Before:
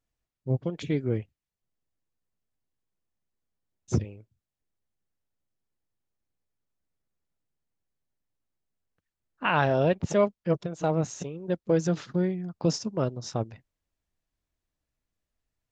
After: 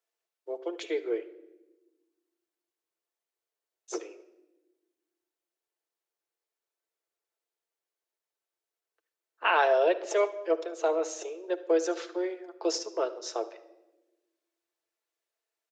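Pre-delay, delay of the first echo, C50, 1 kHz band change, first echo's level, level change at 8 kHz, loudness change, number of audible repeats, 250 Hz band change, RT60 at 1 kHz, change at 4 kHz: 4 ms, 74 ms, 14.5 dB, +1.0 dB, -20.5 dB, no reading, -1.5 dB, 1, -8.0 dB, 0.85 s, +1.0 dB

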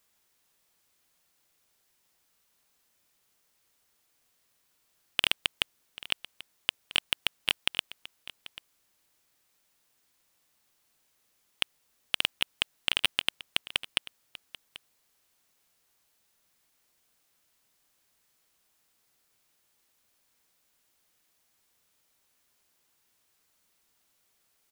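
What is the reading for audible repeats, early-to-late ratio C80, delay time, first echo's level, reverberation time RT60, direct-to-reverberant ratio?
1, no reverb, 788 ms, -17.0 dB, no reverb, no reverb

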